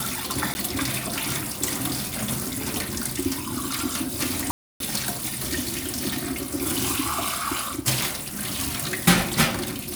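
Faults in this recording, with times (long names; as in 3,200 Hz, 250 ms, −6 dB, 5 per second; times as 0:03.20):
0:00.54–0:00.55: drop-out 10 ms
0:04.51–0:04.80: drop-out 292 ms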